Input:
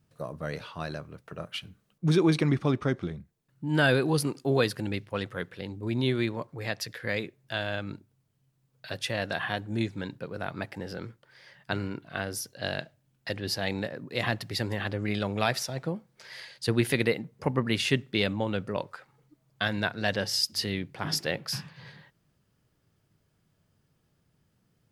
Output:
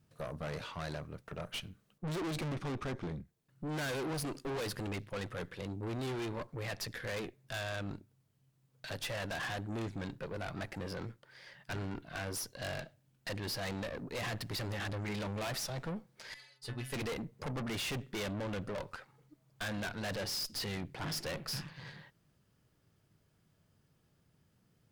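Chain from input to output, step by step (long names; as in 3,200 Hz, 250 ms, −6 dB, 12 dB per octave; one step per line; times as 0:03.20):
0:16.34–0:16.93: stiff-string resonator 130 Hz, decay 0.34 s, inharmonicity 0.008
tube saturation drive 38 dB, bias 0.65
level +2.5 dB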